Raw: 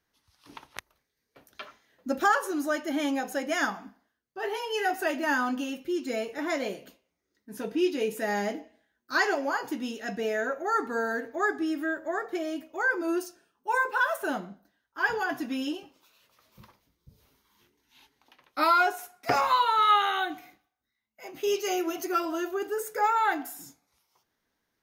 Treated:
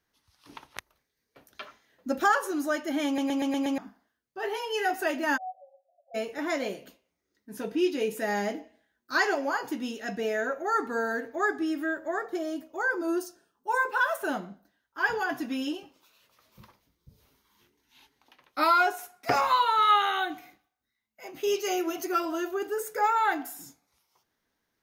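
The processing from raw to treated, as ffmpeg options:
-filter_complex "[0:a]asplit=3[a][b][c];[a]afade=t=out:st=5.36:d=0.02[d];[b]asuperpass=centerf=660:order=12:qfactor=3.3,afade=t=in:st=5.36:d=0.02,afade=t=out:st=6.14:d=0.02[e];[c]afade=t=in:st=6.14:d=0.02[f];[d][e][f]amix=inputs=3:normalize=0,asettb=1/sr,asplit=3[g][h][i];[g]atrim=end=12.294[j];[h]atrim=start=12.29:end=13.79,asetpts=PTS-STARTPTS,afade=t=in:d=0.004:c=qsin,afade=t=out:st=1.496:d=0.004:c=qsin,equalizer=f=2.4k:t=o:w=0.68:g=-8[k];[i]atrim=start=13.786[l];[j][k]acrossfade=d=0.004:c1=hsin:c2=qsin[m];[m][l]acrossfade=d=0.004:c1=qsin:c2=hsin,asplit=7[n][o][p][q][r][s][t];[n]atrim=end=3.182[u];[o]atrim=start=3.058:end=3.182[v];[p]atrim=start=3.058:end=3.182[w];[q]atrim=start=3.058:end=3.182[x];[r]atrim=start=3.058:end=3.182[y];[s]atrim=start=3.058:end=3.182[z];[t]atrim=start=3.778[aa];[u][v]acrossfade=d=0.004:c1=hsin:c2=hsin[ab];[ab][w]acrossfade=d=0.004:c1=hsin:c2=hsin[ac];[ac][x]acrossfade=d=0.004:c1=hsin:c2=hsin[ad];[ad][y]acrossfade=d=0.004:c1=hsin:c2=hsin[ae];[ae][z]acrossfade=d=0.004:c1=hsin:c2=hsin[af];[af][aa]acrossfade=d=0.004:c1=hsin:c2=hsin"

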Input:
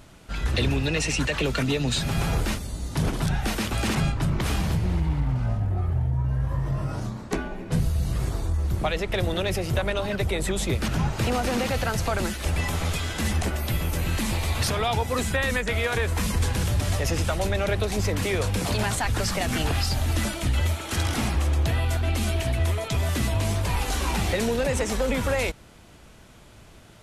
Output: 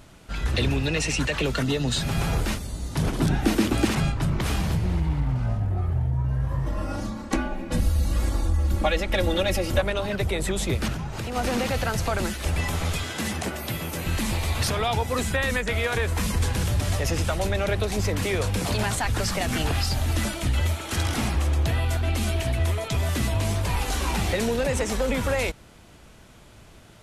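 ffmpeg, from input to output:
-filter_complex "[0:a]asettb=1/sr,asplit=3[a][b][c];[a]atrim=end=1.544[d];[b]atrim=start=1.54:end=1.99,asetpts=PTS-STARTPTS,afade=t=in:d=0.004:c=qsin,afade=t=out:st=0.446:d=0.004:c=qsin,bandreject=f=2.4k:w=6.2[e];[c]atrim=start=1.986[f];[d][e]acrossfade=d=0.004:c1=hsin:c2=qsin[g];[g][f]acrossfade=d=0.004:c1=qsin:c2=hsin,asettb=1/sr,asplit=3[h][i][j];[h]atrim=end=3.184[k];[i]atrim=start=3.18:end=3.85,asetpts=PTS-STARTPTS,afade=t=in:d=0.004:c=qsin,afade=t=out:st=0.666:d=0.004:c=qsin,equalizer=f=300:t=o:w=0.86:g=14[l];[j]atrim=start=3.846[m];[k][l]acrossfade=d=0.004:c1=hsin:c2=qsin[n];[n][m]acrossfade=d=0.004:c1=qsin:c2=hsin,asettb=1/sr,asplit=3[o][p][q];[o]atrim=end=6.664[r];[p]atrim=start=6.66:end=9.81,asetpts=PTS-STARTPTS,afade=t=in:d=0.004:c=qsin,afade=t=out:st=3.146:d=0.004:c=qsin,aecho=1:1:3.6:0.96,atrim=end_sample=138915[s];[q]atrim=start=9.806[t];[r][s]acrossfade=d=0.004:c1=hsin:c2=qsin[u];[u][t]acrossfade=d=0.004:c1=qsin:c2=hsin,asplit=3[v][w][x];[v]afade=t=out:st=10.92:d=0.02[y];[w]acompressor=threshold=-27dB:ratio=6:attack=3.2:release=140:knee=1:detection=peak,afade=t=in:st=10.92:d=0.02,afade=t=out:st=11.35:d=0.02[z];[x]afade=t=in:st=11.35:d=0.02[aa];[y][z][aa]amix=inputs=3:normalize=0,asettb=1/sr,asplit=3[ab][ac][ad];[ab]atrim=end=13.034[ae];[ac]atrim=start=13.03:end=14.06,asetpts=PTS-STARTPTS,afade=t=in:d=0.004:c=qsin,afade=t=out:st=1.026:d=0.004:c=qsin,highpass=130[af];[ad]atrim=start=14.056[ag];[ae][af]acrossfade=d=0.004:c1=hsin:c2=qsin[ah];[ah][ag]acrossfade=d=0.004:c1=qsin:c2=hsin"

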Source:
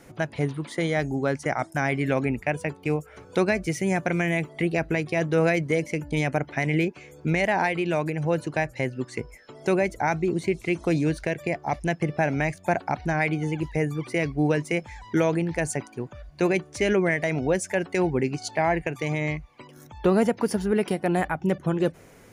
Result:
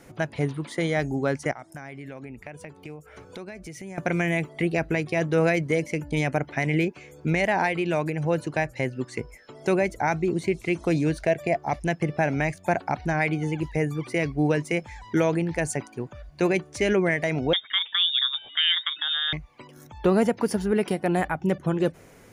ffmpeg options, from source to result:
-filter_complex "[0:a]asettb=1/sr,asplit=3[a][b][c];[a]atrim=end=1.514[d];[b]atrim=start=1.51:end=3.98,asetpts=PTS-STARTPTS,afade=t=in:d=0.004:c=qsin,afade=t=out:st=2.466:d=0.004:c=qsin,acompressor=threshold=-38dB:ratio=4:attack=3.2:release=140:knee=1:detection=peak[e];[c]atrim=start=3.976[f];[d][e]acrossfade=d=0.004:c1=hsin:c2=qsin[g];[g][f]acrossfade=d=0.004:c1=qsin:c2=hsin,asettb=1/sr,asplit=3[h][i][j];[h]atrim=end=11.174[k];[i]atrim=start=11.17:end=11.57,asetpts=PTS-STARTPTS,afade=t=in:d=0.004:c=qsin,afade=t=out:st=0.396:d=0.004:c=qsin,equalizer=f=670:w=5.9:g=10.5[l];[j]atrim=start=11.566[m];[k][l]acrossfade=d=0.004:c1=hsin:c2=qsin[n];[n][m]acrossfade=d=0.004:c1=qsin:c2=hsin,asettb=1/sr,asplit=3[o][p][q];[o]atrim=end=17.534[r];[p]atrim=start=17.53:end=19.33,asetpts=PTS-STARTPTS,afade=t=in:d=0.004:c=qsin,afade=t=out:st=1.796:d=0.004:c=qsin,lowpass=f=3.2k:t=q:w=0.5098,lowpass=f=3.2k:t=q:w=0.6013,lowpass=f=3.2k:t=q:w=0.9,lowpass=f=3.2k:t=q:w=2.563,afreqshift=-3800[s];[q]atrim=start=19.326[t];[r][s]acrossfade=d=0.004:c1=hsin:c2=qsin[u];[u][t]acrossfade=d=0.004:c1=qsin:c2=hsin"

